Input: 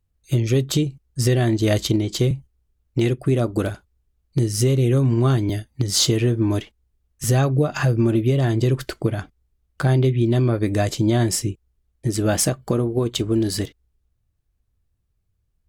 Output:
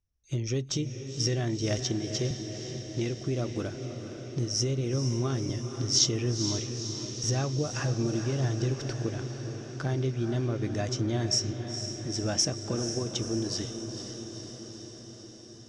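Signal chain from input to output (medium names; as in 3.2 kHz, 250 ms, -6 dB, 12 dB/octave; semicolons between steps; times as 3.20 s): four-pole ladder low-pass 5.8 kHz, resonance 85%; peaking EQ 4.5 kHz -9 dB 0.47 oct; on a send: echo that smears into a reverb 483 ms, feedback 68%, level -8 dB; on the sum: trim +1.5 dB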